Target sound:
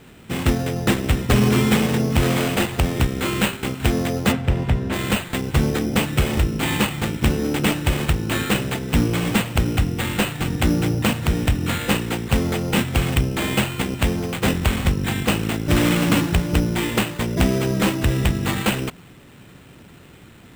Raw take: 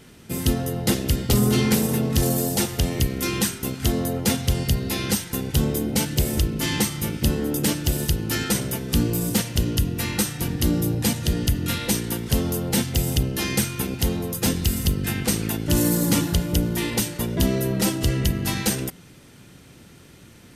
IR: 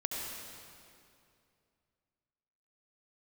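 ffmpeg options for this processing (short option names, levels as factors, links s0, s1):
-filter_complex "[0:a]acrusher=samples=8:mix=1:aa=0.000001,asplit=3[s0][s1][s2];[s0]afade=t=out:st=4.31:d=0.02[s3];[s1]lowpass=f=1700:p=1,afade=t=in:st=4.31:d=0.02,afade=t=out:st=4.92:d=0.02[s4];[s2]afade=t=in:st=4.92:d=0.02[s5];[s3][s4][s5]amix=inputs=3:normalize=0,volume=1.33"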